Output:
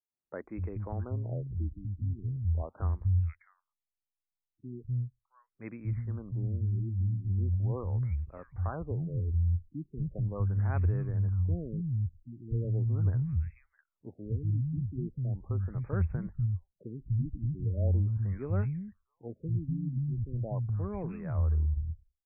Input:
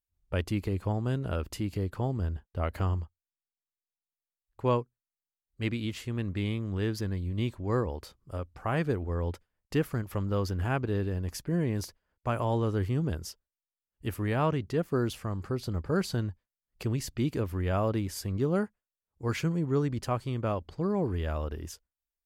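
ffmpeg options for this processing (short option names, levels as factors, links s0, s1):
-filter_complex "[0:a]acrossover=split=190|2100[s0][s1][s2];[s0]adelay=250[s3];[s2]adelay=660[s4];[s3][s1][s4]amix=inputs=3:normalize=0,asubboost=boost=6:cutoff=120,afftfilt=real='re*lt(b*sr/1024,320*pow(2700/320,0.5+0.5*sin(2*PI*0.39*pts/sr)))':imag='im*lt(b*sr/1024,320*pow(2700/320,0.5+0.5*sin(2*PI*0.39*pts/sr)))':win_size=1024:overlap=0.75,volume=0.501"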